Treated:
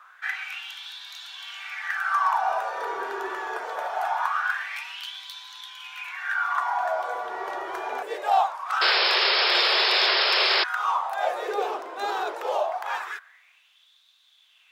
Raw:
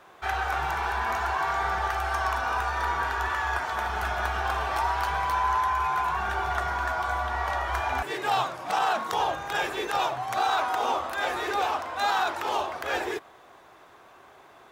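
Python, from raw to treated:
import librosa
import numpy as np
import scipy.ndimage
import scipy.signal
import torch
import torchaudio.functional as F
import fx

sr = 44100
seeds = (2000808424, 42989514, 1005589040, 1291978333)

y = fx.filter_lfo_highpass(x, sr, shape='sine', hz=0.23, low_hz=380.0, high_hz=3700.0, q=6.4)
y = fx.spec_paint(y, sr, seeds[0], shape='noise', start_s=8.81, length_s=1.83, low_hz=350.0, high_hz=5400.0, level_db=-16.0)
y = y * librosa.db_to_amplitude(-5.5)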